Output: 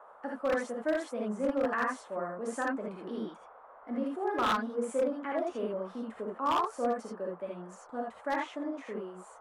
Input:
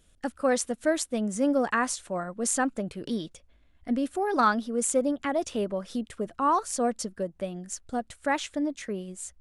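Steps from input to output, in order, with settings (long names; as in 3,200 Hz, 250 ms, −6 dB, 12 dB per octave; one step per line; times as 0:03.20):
three-way crossover with the lows and the highs turned down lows −23 dB, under 230 Hz, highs −18 dB, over 2,300 Hz
notch filter 740 Hz, Q 20
reverb whose tail is shaped and stops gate 100 ms rising, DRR −2 dB
noise in a band 480–1,300 Hz −47 dBFS
wave folding −15 dBFS
level −6.5 dB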